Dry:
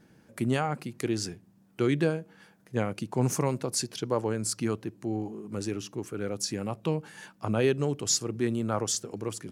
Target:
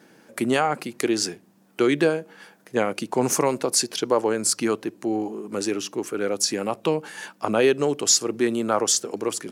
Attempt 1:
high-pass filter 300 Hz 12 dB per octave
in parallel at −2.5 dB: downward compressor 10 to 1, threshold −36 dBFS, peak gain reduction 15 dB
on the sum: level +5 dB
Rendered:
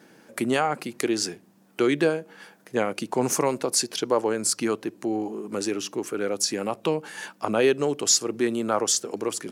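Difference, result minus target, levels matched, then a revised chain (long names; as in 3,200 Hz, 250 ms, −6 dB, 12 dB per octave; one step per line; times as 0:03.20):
downward compressor: peak gain reduction +8 dB
high-pass filter 300 Hz 12 dB per octave
in parallel at −2.5 dB: downward compressor 10 to 1, threshold −27 dBFS, peak gain reduction 6.5 dB
on the sum: level +5 dB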